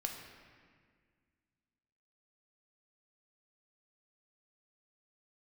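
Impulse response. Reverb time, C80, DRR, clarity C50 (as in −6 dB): 1.8 s, 6.0 dB, 1.5 dB, 4.5 dB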